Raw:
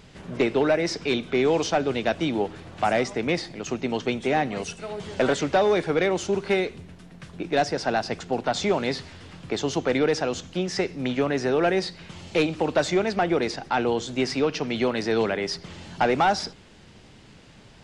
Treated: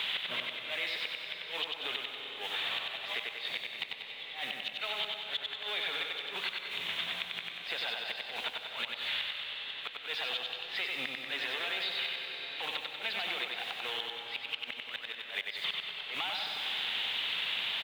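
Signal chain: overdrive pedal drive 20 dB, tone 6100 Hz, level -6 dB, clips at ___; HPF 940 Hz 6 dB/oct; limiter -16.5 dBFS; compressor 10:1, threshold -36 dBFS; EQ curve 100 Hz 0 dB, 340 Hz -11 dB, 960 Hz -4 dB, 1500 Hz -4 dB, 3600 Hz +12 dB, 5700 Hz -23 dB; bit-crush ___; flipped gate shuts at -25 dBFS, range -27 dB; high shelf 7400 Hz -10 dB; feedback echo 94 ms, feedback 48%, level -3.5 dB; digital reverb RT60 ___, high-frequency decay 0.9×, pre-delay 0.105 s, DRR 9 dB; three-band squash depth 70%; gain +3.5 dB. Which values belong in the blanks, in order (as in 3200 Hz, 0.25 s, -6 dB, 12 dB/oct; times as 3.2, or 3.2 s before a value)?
-13 dBFS, 9-bit, 3.5 s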